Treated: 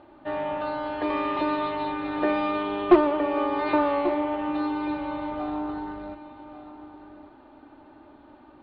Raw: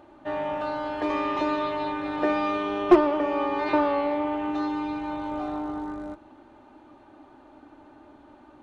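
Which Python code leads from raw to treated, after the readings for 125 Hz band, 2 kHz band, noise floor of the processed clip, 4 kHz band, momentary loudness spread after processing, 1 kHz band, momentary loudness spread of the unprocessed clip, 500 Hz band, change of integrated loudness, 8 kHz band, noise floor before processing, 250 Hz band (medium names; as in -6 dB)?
+0.5 dB, 0.0 dB, -52 dBFS, 0.0 dB, 22 LU, 0.0 dB, 13 LU, 0.0 dB, 0.0 dB, no reading, -53 dBFS, +0.5 dB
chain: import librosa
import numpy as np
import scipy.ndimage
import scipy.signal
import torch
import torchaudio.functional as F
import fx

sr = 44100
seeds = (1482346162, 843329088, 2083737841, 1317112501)

y = scipy.signal.sosfilt(scipy.signal.butter(8, 4500.0, 'lowpass', fs=sr, output='sos'), x)
y = y + 10.0 ** (-13.5 / 20.0) * np.pad(y, (int(1139 * sr / 1000.0), 0))[:len(y)]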